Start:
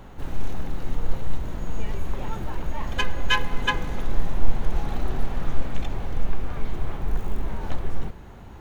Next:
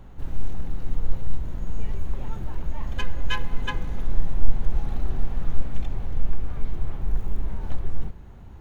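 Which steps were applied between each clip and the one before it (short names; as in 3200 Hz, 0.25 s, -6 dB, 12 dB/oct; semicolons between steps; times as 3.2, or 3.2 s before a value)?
low shelf 200 Hz +9.5 dB; gain -8 dB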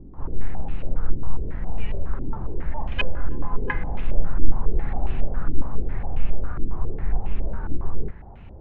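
stepped low-pass 7.3 Hz 320–2600 Hz; gain +1 dB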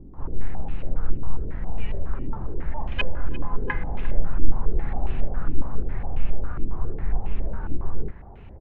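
speakerphone echo 0.35 s, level -16 dB; gain -1 dB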